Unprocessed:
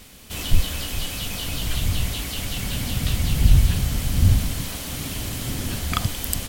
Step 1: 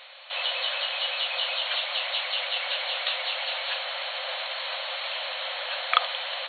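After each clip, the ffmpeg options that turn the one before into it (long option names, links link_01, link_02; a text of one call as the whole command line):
ffmpeg -i in.wav -af "afftfilt=real='re*between(b*sr/4096,500,4400)':imag='im*between(b*sr/4096,500,4400)':win_size=4096:overlap=0.75,volume=5dB" out.wav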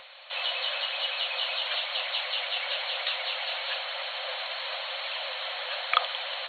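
ffmpeg -i in.wav -filter_complex "[0:a]acrossover=split=1200|1500[link_01][link_02][link_03];[link_01]acompressor=mode=upward:threshold=-52dB:ratio=2.5[link_04];[link_04][link_02][link_03]amix=inputs=3:normalize=0,aphaser=in_gain=1:out_gain=1:delay=3.1:decay=0.22:speed=1:type=triangular,volume=-2dB" out.wav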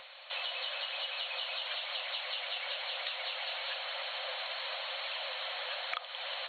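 ffmpeg -i in.wav -af "acompressor=threshold=-32dB:ratio=6,volume=-2.5dB" out.wav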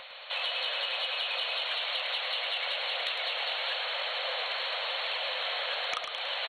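ffmpeg -i in.wav -filter_complex "[0:a]aeval=exprs='0.141*sin(PI/2*1.78*val(0)/0.141)':channel_layout=same,asplit=6[link_01][link_02][link_03][link_04][link_05][link_06];[link_02]adelay=106,afreqshift=-42,volume=-6.5dB[link_07];[link_03]adelay=212,afreqshift=-84,volume=-14.5dB[link_08];[link_04]adelay=318,afreqshift=-126,volume=-22.4dB[link_09];[link_05]adelay=424,afreqshift=-168,volume=-30.4dB[link_10];[link_06]adelay=530,afreqshift=-210,volume=-38.3dB[link_11];[link_01][link_07][link_08][link_09][link_10][link_11]amix=inputs=6:normalize=0,volume=-4dB" out.wav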